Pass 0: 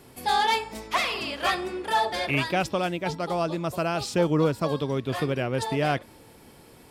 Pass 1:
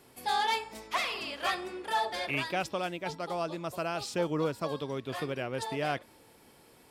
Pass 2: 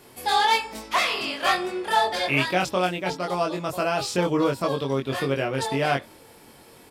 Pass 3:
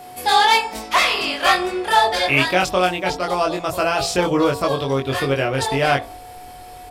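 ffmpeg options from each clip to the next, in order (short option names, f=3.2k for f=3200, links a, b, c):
-af "lowshelf=f=250:g=-7.5,volume=-5.5dB"
-filter_complex "[0:a]asplit=2[a][b];[b]adelay=22,volume=-2.5dB[c];[a][c]amix=inputs=2:normalize=0,volume=7dB"
-af "bandreject=f=56.7:t=h:w=4,bandreject=f=113.4:t=h:w=4,bandreject=f=170.1:t=h:w=4,bandreject=f=226.8:t=h:w=4,bandreject=f=283.5:t=h:w=4,bandreject=f=340.2:t=h:w=4,bandreject=f=396.9:t=h:w=4,bandreject=f=453.6:t=h:w=4,bandreject=f=510.3:t=h:w=4,bandreject=f=567:t=h:w=4,bandreject=f=623.7:t=h:w=4,bandreject=f=680.4:t=h:w=4,bandreject=f=737.1:t=h:w=4,bandreject=f=793.8:t=h:w=4,bandreject=f=850.5:t=h:w=4,bandreject=f=907.2:t=h:w=4,bandreject=f=963.9:t=h:w=4,bandreject=f=1.0206k:t=h:w=4,bandreject=f=1.0773k:t=h:w=4,bandreject=f=1.134k:t=h:w=4,aeval=exprs='val(0)+0.00708*sin(2*PI*730*n/s)':c=same,asubboost=boost=9.5:cutoff=58,volume=6.5dB"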